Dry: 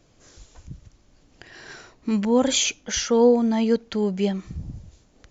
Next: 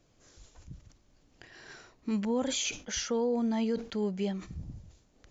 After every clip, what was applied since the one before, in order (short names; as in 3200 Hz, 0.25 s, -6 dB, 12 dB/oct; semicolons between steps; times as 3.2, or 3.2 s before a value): limiter -14.5 dBFS, peak gain reduction 7 dB; sustainer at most 150 dB/s; gain -8 dB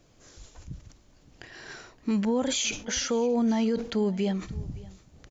limiter -25.5 dBFS, peak gain reduction 4 dB; echo 0.568 s -21.5 dB; gain +6.5 dB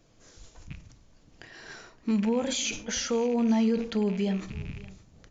rattling part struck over -37 dBFS, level -33 dBFS; on a send at -10.5 dB: reverb RT60 0.50 s, pre-delay 4 ms; on the sum: downsampling 16000 Hz; gain -2 dB